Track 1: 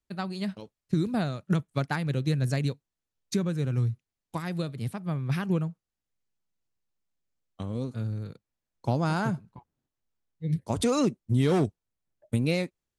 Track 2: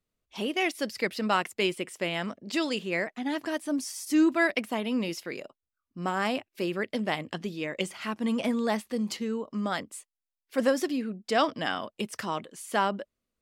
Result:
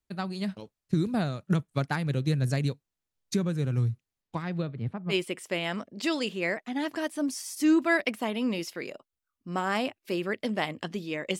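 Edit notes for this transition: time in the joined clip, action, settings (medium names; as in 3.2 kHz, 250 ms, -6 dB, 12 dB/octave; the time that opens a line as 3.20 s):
track 1
4.21–5.14 s: low-pass 5.8 kHz -> 1.2 kHz
5.11 s: go over to track 2 from 1.61 s, crossfade 0.06 s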